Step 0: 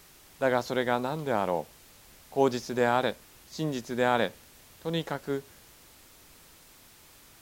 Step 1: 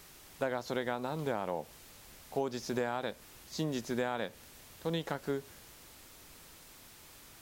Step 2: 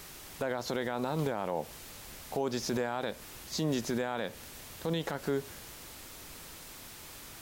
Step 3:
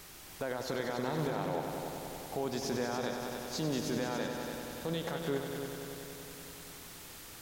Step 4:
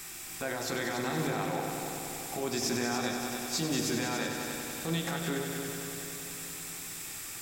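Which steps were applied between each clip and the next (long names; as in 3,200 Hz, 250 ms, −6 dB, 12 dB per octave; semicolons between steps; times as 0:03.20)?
downward compressor 16 to 1, threshold −29 dBFS, peak gain reduction 12.5 dB
brickwall limiter −28.5 dBFS, peak gain reduction 10 dB; level +7 dB
echo machine with several playback heads 95 ms, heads all three, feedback 70%, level −10.5 dB; level −3.5 dB
convolution reverb RT60 0.50 s, pre-delay 3 ms, DRR 6.5 dB; level +7.5 dB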